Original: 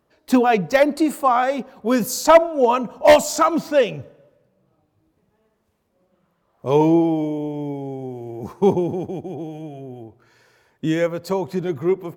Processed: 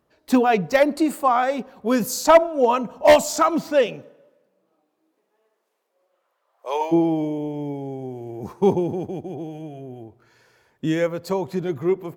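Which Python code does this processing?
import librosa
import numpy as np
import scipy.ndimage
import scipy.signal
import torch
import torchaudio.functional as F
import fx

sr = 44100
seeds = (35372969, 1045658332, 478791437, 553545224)

y = fx.highpass(x, sr, hz=fx.line((3.86, 170.0), (6.91, 620.0)), slope=24, at=(3.86, 6.91), fade=0.02)
y = F.gain(torch.from_numpy(y), -1.5).numpy()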